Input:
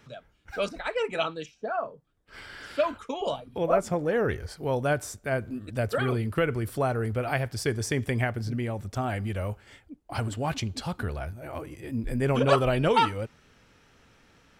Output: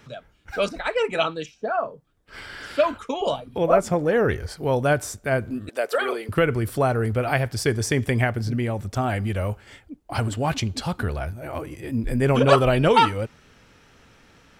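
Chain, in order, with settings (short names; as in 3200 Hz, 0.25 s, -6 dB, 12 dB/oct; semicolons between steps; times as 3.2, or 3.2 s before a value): 5.69–6.29 HPF 380 Hz 24 dB/oct; gain +5.5 dB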